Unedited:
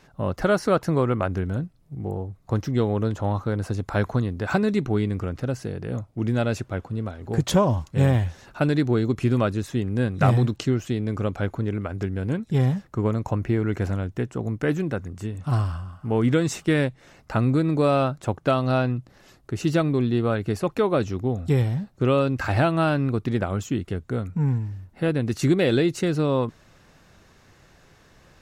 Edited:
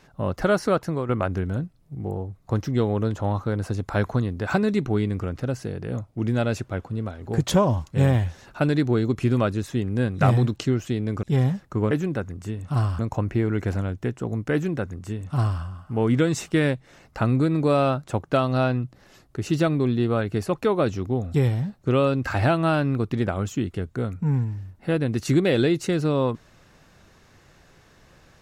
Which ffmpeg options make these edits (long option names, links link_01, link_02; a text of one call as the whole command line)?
ffmpeg -i in.wav -filter_complex "[0:a]asplit=5[link_01][link_02][link_03][link_04][link_05];[link_01]atrim=end=1.09,asetpts=PTS-STARTPTS,afade=type=out:start_time=0.65:duration=0.44:silence=0.375837[link_06];[link_02]atrim=start=1.09:end=11.232,asetpts=PTS-STARTPTS,afade=type=in:duration=0.004:curve=hsin:silence=0.375837[link_07];[link_03]atrim=start=12.448:end=13.132[link_08];[link_04]atrim=start=14.668:end=15.752[link_09];[link_05]atrim=start=13.128[link_10];[link_06][link_07]concat=n=2:v=0:a=1[link_11];[link_11][link_08]acrossfade=duration=0.004:curve1=hsin:curve2=hsin[link_12];[link_12][link_09]acrossfade=duration=0.004:curve1=hsin:curve2=hsin[link_13];[link_13][link_10]acrossfade=duration=0.004:curve1=hsin:curve2=hsin" out.wav